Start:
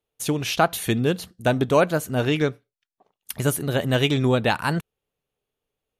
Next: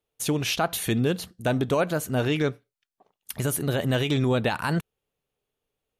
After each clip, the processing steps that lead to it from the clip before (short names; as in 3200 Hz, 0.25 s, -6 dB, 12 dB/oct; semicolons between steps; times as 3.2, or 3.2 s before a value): limiter -14 dBFS, peak gain reduction 9 dB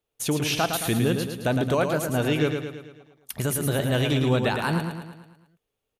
feedback echo 0.11 s, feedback 53%, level -6 dB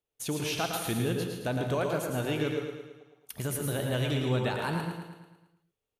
non-linear reverb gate 0.18 s rising, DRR 5.5 dB; gain -7.5 dB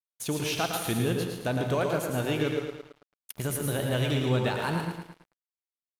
crossover distortion -48.5 dBFS; gain +3 dB